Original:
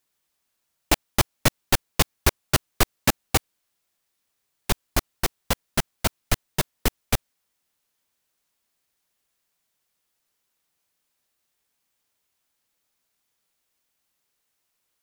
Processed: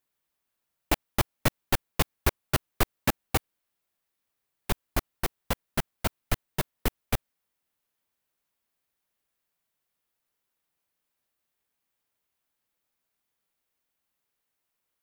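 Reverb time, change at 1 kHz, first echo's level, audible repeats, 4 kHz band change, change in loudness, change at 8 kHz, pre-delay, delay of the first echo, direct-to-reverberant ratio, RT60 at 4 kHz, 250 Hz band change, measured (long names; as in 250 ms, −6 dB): no reverb audible, −4.5 dB, no echo audible, no echo audible, −8.0 dB, −5.5 dB, −9.0 dB, no reverb audible, no echo audible, no reverb audible, no reverb audible, −4.0 dB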